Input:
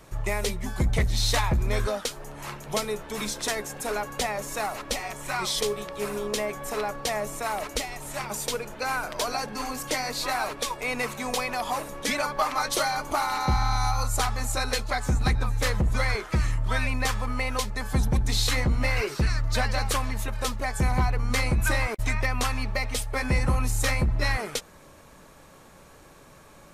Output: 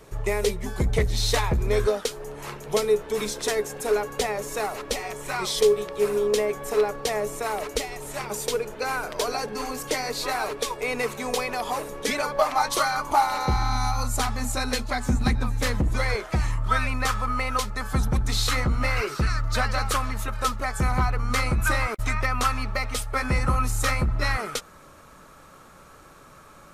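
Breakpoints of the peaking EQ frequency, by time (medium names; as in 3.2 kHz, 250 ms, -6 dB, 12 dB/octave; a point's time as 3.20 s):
peaking EQ +11.5 dB 0.28 oct
12.23 s 430 Hz
12.92 s 1.4 kHz
13.78 s 240 Hz
15.74 s 240 Hz
16.66 s 1.3 kHz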